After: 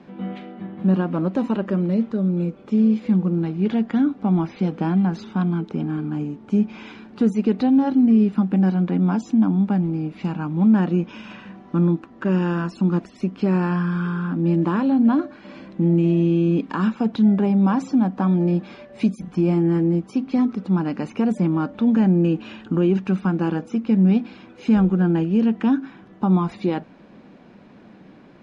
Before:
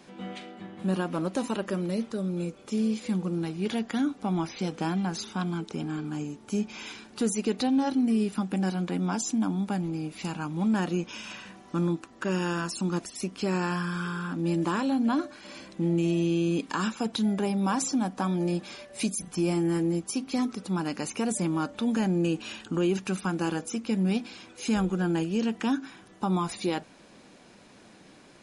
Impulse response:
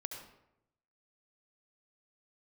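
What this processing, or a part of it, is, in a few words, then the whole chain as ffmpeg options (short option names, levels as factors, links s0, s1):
phone in a pocket: -af "lowpass=3500,equalizer=f=200:t=o:w=1.1:g=6,highshelf=f=2400:g=-9,volume=1.68"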